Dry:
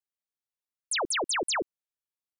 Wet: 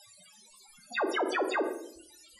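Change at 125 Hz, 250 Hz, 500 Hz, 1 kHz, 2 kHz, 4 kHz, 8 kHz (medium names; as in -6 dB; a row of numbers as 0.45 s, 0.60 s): under -10 dB, +4.5 dB, +3.5 dB, 0.0 dB, -1.0 dB, -9.5 dB, -16.0 dB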